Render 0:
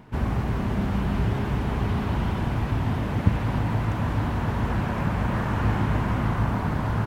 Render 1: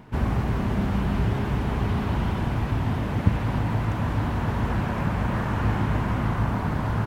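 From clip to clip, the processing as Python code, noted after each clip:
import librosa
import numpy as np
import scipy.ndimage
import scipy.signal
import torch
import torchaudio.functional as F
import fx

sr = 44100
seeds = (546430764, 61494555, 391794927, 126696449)

y = fx.rider(x, sr, range_db=10, speed_s=2.0)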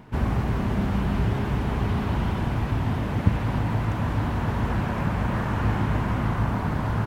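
y = x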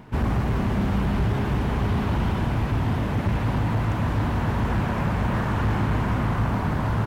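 y = np.clip(x, -10.0 ** (-19.5 / 20.0), 10.0 ** (-19.5 / 20.0))
y = y * 10.0 ** (2.0 / 20.0)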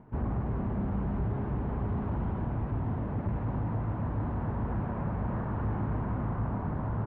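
y = scipy.signal.sosfilt(scipy.signal.butter(2, 1100.0, 'lowpass', fs=sr, output='sos'), x)
y = y * 10.0 ** (-8.0 / 20.0)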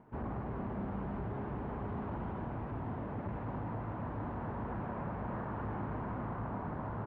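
y = fx.low_shelf(x, sr, hz=190.0, db=-11.0)
y = y * 10.0 ** (-1.5 / 20.0)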